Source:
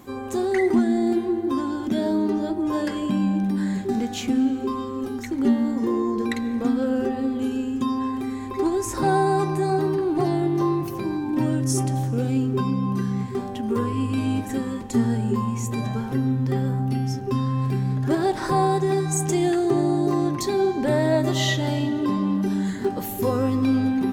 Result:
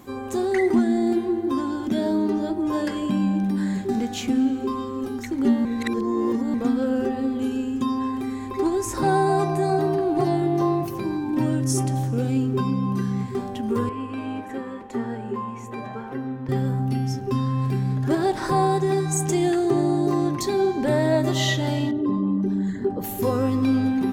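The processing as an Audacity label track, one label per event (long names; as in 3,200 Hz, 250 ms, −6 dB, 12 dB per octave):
5.650000	6.540000	reverse
9.280000	10.840000	steady tone 690 Hz −28 dBFS
13.890000	16.490000	three-way crossover with the lows and the highs turned down lows −14 dB, under 310 Hz, highs −16 dB, over 2,700 Hz
21.910000	23.040000	spectral envelope exaggerated exponent 1.5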